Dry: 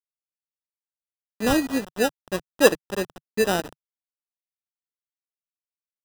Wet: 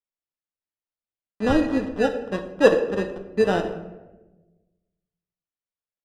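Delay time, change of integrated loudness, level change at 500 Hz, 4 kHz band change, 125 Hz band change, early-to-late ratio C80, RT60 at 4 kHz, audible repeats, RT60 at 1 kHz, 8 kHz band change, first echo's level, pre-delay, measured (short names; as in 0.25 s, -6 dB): none, +1.0 dB, +2.5 dB, -6.0 dB, +3.5 dB, 11.5 dB, 0.60 s, none, 1.0 s, under -10 dB, none, 9 ms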